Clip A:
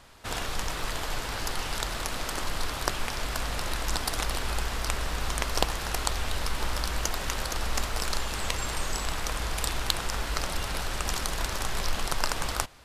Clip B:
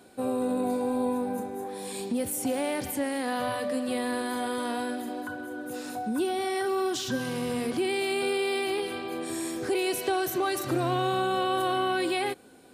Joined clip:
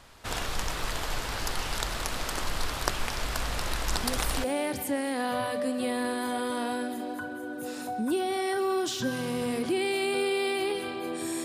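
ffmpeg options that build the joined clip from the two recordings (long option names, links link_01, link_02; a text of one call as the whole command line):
ffmpeg -i cue0.wav -i cue1.wav -filter_complex "[1:a]asplit=2[link_01][link_02];[0:a]apad=whole_dur=11.44,atrim=end=11.44,atrim=end=4.442[link_03];[link_02]atrim=start=2.518:end=9.52[link_04];[link_01]atrim=start=2.05:end=2.52,asetpts=PTS-STARTPTS,volume=-6.5dB,afade=type=in:duration=0.004:curve=hsin,afade=type=out:start_time=0.466:duration=0.004:curve=hsin,adelay=175077S[link_05];[link_03][link_04]acrossfade=duration=0.004:curve1=hsin:curve2=hsin[link_06];[link_06][link_05]amix=inputs=2:normalize=0" out.wav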